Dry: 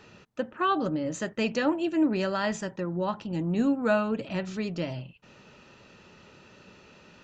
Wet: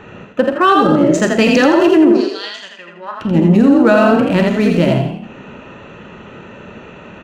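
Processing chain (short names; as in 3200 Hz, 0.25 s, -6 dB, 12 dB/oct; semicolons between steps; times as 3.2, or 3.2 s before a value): Wiener smoothing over 9 samples; 2.11–3.2 band-pass 5500 Hz -> 1500 Hz, Q 3.7; frequency-shifting echo 83 ms, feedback 39%, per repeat +33 Hz, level -3.5 dB; Schroeder reverb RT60 0.37 s, combs from 31 ms, DRR 8.5 dB; maximiser +18 dB; gain -1 dB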